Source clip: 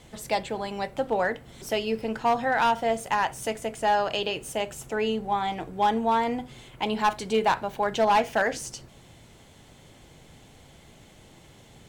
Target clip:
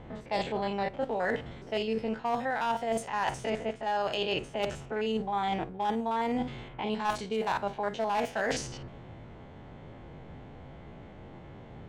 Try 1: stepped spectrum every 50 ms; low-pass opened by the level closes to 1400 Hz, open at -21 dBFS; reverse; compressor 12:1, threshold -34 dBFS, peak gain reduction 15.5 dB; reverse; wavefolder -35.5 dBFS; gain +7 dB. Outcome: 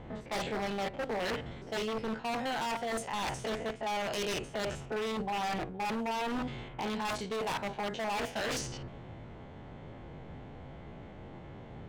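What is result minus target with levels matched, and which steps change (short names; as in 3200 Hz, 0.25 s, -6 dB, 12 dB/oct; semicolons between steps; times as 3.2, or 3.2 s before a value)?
wavefolder: distortion +28 dB
change: wavefolder -26 dBFS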